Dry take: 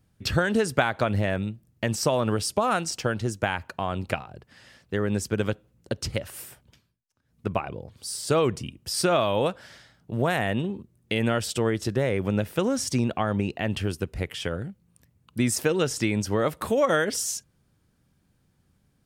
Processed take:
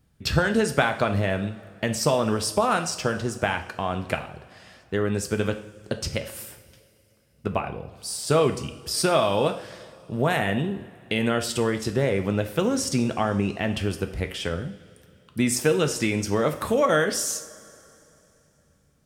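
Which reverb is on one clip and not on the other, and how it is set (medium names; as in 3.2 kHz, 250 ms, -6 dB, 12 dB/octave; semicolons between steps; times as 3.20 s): two-slope reverb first 0.54 s, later 3.1 s, from -18 dB, DRR 6 dB; trim +1 dB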